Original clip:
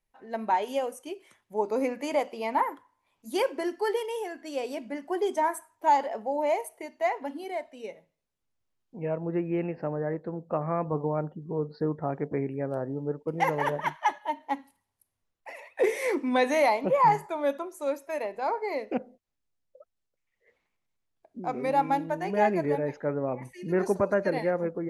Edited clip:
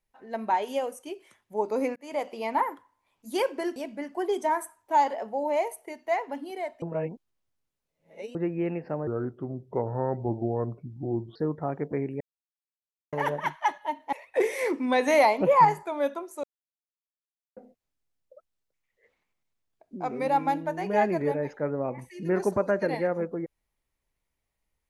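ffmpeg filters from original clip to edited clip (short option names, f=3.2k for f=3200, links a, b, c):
-filter_complex "[0:a]asplit=14[a][b][c][d][e][f][g][h][i][j][k][l][m][n];[a]atrim=end=1.96,asetpts=PTS-STARTPTS,afade=t=out:st=1.956:d=0.004:c=hsin[o];[b]atrim=start=1.96:end=3.762,asetpts=PTS-STARTPTS,afade=t=in:d=0.34[p];[c]atrim=start=4.688:end=7.752[q];[d]atrim=start=7.748:end=9.282,asetpts=PTS-STARTPTS,areverse[r];[e]atrim=start=9.278:end=10.004[s];[f]atrim=start=10:end=11.76,asetpts=PTS-STARTPTS,asetrate=33957,aresample=44100[t];[g]atrim=start=11.756:end=12.61,asetpts=PTS-STARTPTS,afade=t=out:st=0.85:d=0.004:c=hsin[u];[h]atrim=start=12.61:end=13.53,asetpts=PTS-STARTPTS,volume=0[v];[i]atrim=start=13.53:end=14.532,asetpts=PTS-STARTPTS,afade=t=in:d=0.004:c=hsin[w];[j]atrim=start=15.558:end=16.512[x];[k]atrim=start=16.508:end=17.082,asetpts=PTS-STARTPTS,volume=3dB[y];[l]atrim=start=17.078:end=17.87,asetpts=PTS-STARTPTS,afade=t=out:st=0.788:d=0.004:c=hsin[z];[m]atrim=start=17.87:end=19,asetpts=PTS-STARTPTS,volume=0[aa];[n]atrim=start=19,asetpts=PTS-STARTPTS,afade=t=in:d=0.004:c=hsin[ab];[o][p]concat=n=2:v=0:a=1[ac];[ac][q]acrossfade=d=0.004:c1=hsin:c2=hsin[ad];[ad][r]acrossfade=d=0.004:c1=hsin:c2=hsin[ae];[ae][s]acrossfade=d=0.004:c1=hsin:c2=hsin[af];[af][t]acrossfade=d=0.004:c1=hsin:c2=hsin[ag];[u][v][w]concat=n=3:v=0:a=1[ah];[ag][ah]acrossfade=d=0.004:c1=hsin:c2=hsin[ai];[ai][x]acrossfade=d=0.004:c1=hsin:c2=hsin[aj];[aj][y]acrossfade=d=0.004:c1=hsin:c2=hsin[ak];[z][aa][ab]concat=n=3:v=0:a=1[al];[ak][al]acrossfade=d=0.004:c1=hsin:c2=hsin"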